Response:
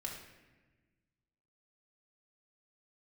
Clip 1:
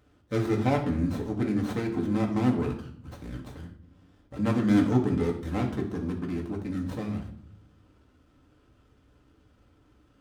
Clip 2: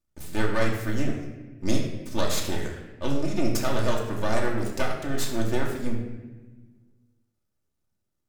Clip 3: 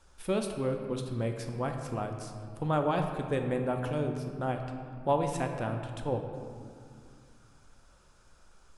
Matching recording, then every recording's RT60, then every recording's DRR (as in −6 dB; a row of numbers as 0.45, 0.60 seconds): 2; 0.60, 1.3, 2.3 seconds; 0.0, −2.0, 3.5 decibels